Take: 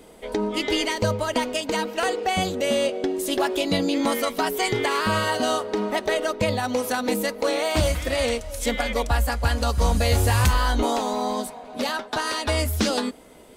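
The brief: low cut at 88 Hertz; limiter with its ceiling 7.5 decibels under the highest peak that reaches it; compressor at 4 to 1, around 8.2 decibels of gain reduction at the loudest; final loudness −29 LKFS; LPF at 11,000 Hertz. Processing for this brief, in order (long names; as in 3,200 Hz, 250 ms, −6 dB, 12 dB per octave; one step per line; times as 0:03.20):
high-pass filter 88 Hz
low-pass filter 11,000 Hz
downward compressor 4 to 1, threshold −28 dBFS
level +4 dB
brickwall limiter −19 dBFS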